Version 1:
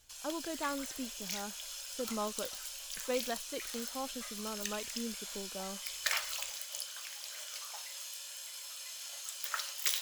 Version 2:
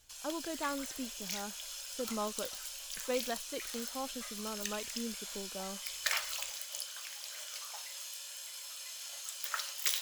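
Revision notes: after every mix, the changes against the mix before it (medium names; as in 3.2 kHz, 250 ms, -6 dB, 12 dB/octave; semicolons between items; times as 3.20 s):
no change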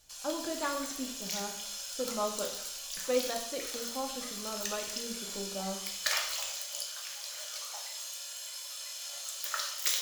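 reverb: on, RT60 0.70 s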